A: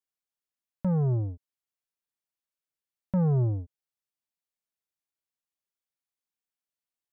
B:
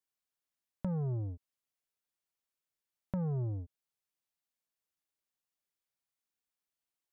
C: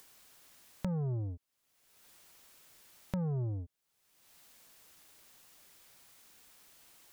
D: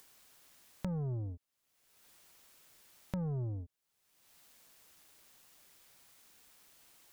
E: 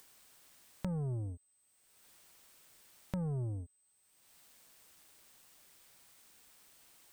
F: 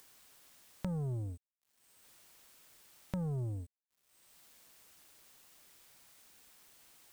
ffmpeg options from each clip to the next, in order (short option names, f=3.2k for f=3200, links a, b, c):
-af "acompressor=threshold=-34dB:ratio=6"
-af "acompressor=mode=upward:threshold=-36dB:ratio=2.5"
-af "tremolo=f=140:d=0.182,volume=-1.5dB"
-af "aeval=exprs='val(0)+0.000282*sin(2*PI*8200*n/s)':c=same"
-af "acrusher=bits=10:mix=0:aa=0.000001"